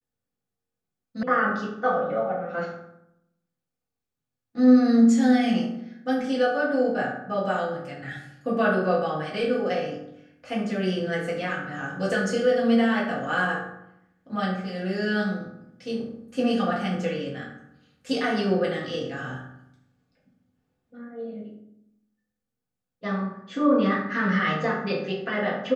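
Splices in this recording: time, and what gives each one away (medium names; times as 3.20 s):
1.23 s: sound stops dead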